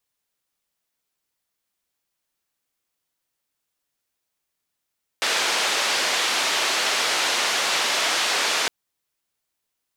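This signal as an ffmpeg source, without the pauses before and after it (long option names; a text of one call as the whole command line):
ffmpeg -f lavfi -i "anoisesrc=color=white:duration=3.46:sample_rate=44100:seed=1,highpass=frequency=440,lowpass=frequency=4700,volume=-10.9dB" out.wav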